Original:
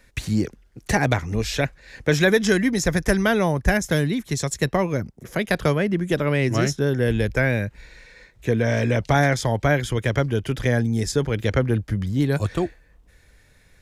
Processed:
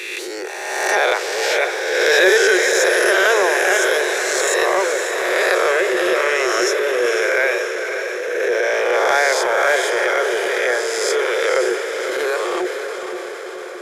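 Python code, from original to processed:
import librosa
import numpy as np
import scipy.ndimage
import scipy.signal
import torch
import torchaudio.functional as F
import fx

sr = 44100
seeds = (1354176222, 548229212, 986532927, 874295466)

y = fx.spec_swells(x, sr, rise_s=1.44)
y = scipy.signal.sosfilt(scipy.signal.cheby1(6, 3, 360.0, 'highpass', fs=sr, output='sos'), y)
y = fx.echo_diffused(y, sr, ms=548, feedback_pct=65, wet_db=-7.5)
y = fx.transient(y, sr, attack_db=-8, sustain_db=2)
y = y * librosa.db_to_amplitude(4.5)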